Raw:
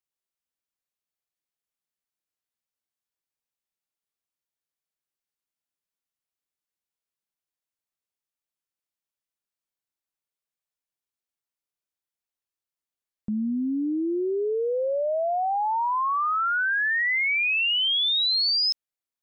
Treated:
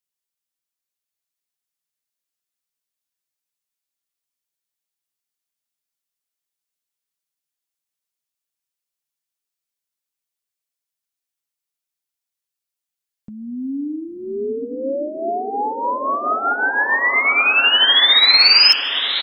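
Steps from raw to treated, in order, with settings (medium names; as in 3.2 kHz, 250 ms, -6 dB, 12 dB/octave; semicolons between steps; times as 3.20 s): treble shelf 2.2 kHz +9 dB; comb 7.2 ms, depth 38%; on a send: echo that smears into a reverb 1086 ms, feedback 53%, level -5 dB; on the sum: plate-style reverb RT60 0.88 s, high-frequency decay 0.5×, pre-delay 115 ms, DRR 19 dB; upward expansion 1.5:1, over -29 dBFS; trim +4 dB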